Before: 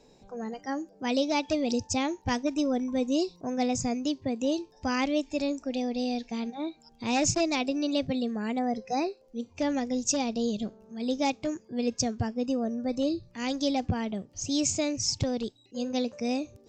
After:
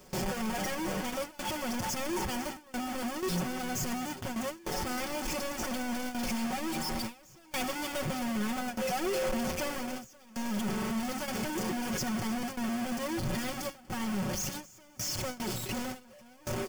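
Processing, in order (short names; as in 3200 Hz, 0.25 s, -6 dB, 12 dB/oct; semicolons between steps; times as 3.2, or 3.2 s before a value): infinite clipping; dynamic EQ 100 Hz, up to +8 dB, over -50 dBFS, Q 1.6; 7.53–9.78 sample leveller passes 2; vocal rider 2 s; notch 3900 Hz, Q 6.2; comb 5.4 ms, depth 82%; multi-head echo 0.101 s, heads all three, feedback 73%, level -20 dB; gate with hold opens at -19 dBFS; gain -7 dB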